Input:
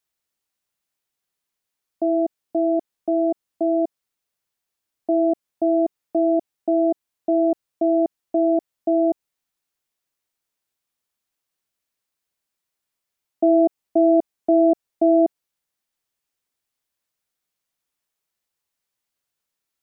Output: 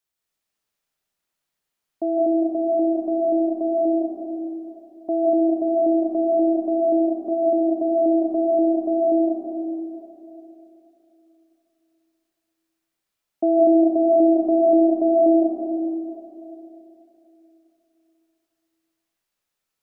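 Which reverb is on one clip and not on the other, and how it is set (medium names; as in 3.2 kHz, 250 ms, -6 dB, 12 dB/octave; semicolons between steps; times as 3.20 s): algorithmic reverb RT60 3.2 s, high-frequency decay 0.6×, pre-delay 115 ms, DRR -4.5 dB; trim -3 dB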